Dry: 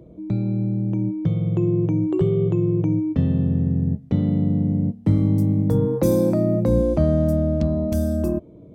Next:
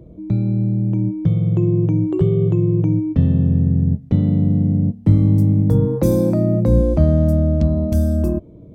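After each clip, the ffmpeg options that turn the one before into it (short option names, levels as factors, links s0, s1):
-af "lowshelf=f=140:g=9.5"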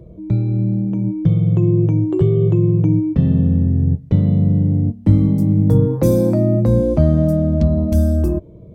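-af "flanger=delay=1.8:depth=6.7:regen=-51:speed=0.23:shape=sinusoidal,volume=1.88"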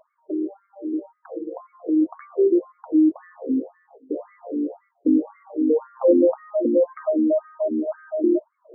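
-af "afftfilt=real='re*between(b*sr/1024,320*pow(1600/320,0.5+0.5*sin(2*PI*1.9*pts/sr))/1.41,320*pow(1600/320,0.5+0.5*sin(2*PI*1.9*pts/sr))*1.41)':imag='im*between(b*sr/1024,320*pow(1600/320,0.5+0.5*sin(2*PI*1.9*pts/sr))/1.41,320*pow(1600/320,0.5+0.5*sin(2*PI*1.9*pts/sr))*1.41)':win_size=1024:overlap=0.75,volume=1.68"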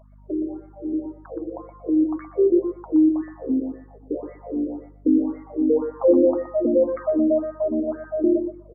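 -filter_complex "[0:a]aeval=exprs='val(0)+0.00316*(sin(2*PI*50*n/s)+sin(2*PI*2*50*n/s)/2+sin(2*PI*3*50*n/s)/3+sin(2*PI*4*50*n/s)/4+sin(2*PI*5*50*n/s)/5)':c=same,asplit=2[s0][s1];[s1]adelay=121,lowpass=f=940:p=1,volume=0.398,asplit=2[s2][s3];[s3]adelay=121,lowpass=f=940:p=1,volume=0.17,asplit=2[s4][s5];[s5]adelay=121,lowpass=f=940:p=1,volume=0.17[s6];[s0][s2][s4][s6]amix=inputs=4:normalize=0"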